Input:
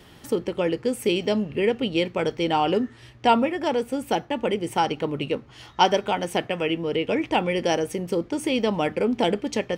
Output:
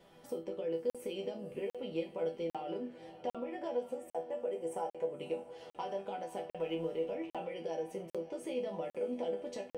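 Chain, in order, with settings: 6.50–7.14 s: companding laws mixed up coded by mu; peaking EQ 590 Hz +13.5 dB 1.3 oct; peak limiter -8 dBFS, peak gain reduction 9.5 dB; 3.93–5.14 s: graphic EQ 250/500/4000/8000 Hz -5/+6/-9/+9 dB; compression, threshold -20 dBFS, peak gain reduction 11 dB; chord resonator E3 minor, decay 0.28 s; echo that smears into a reverb 582 ms, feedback 49%, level -15 dB; crackling interface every 0.80 s, samples 2048, zero, from 0.90 s

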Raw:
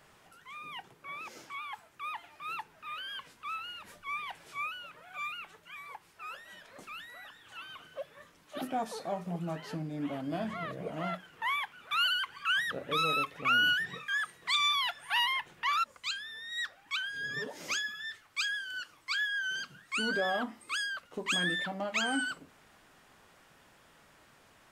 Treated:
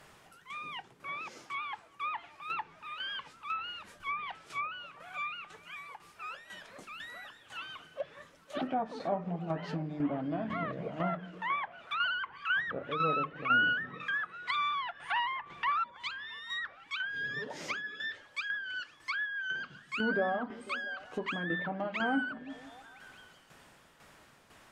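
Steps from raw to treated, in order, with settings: tremolo saw down 2 Hz, depth 60%; repeats whose band climbs or falls 167 ms, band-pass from 160 Hz, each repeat 0.7 oct, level -10 dB; low-pass that closes with the level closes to 1.5 kHz, closed at -33.5 dBFS; trim +4.5 dB

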